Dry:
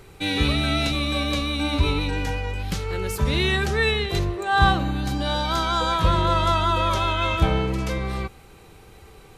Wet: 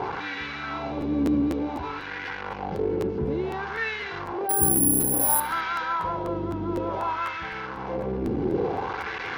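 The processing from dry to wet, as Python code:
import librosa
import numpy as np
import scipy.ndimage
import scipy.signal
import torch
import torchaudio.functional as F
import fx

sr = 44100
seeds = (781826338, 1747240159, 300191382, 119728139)

y = fx.delta_mod(x, sr, bps=32000, step_db=-17.5)
y = fx.tilt_eq(y, sr, slope=-2.5)
y = fx.rider(y, sr, range_db=10, speed_s=0.5)
y = fx.wah_lfo(y, sr, hz=0.57, low_hz=300.0, high_hz=1800.0, q=2.1)
y = fx.resample_bad(y, sr, factor=4, down='filtered', up='zero_stuff', at=(4.49, 5.4))
y = fx.notch_comb(y, sr, f0_hz=620.0)
y = fx.echo_feedback(y, sr, ms=69, feedback_pct=40, wet_db=-22)
y = fx.buffer_crackle(y, sr, first_s=1.0, period_s=0.25, block=512, kind='repeat')
y = y * 10.0 ** (1.5 / 20.0)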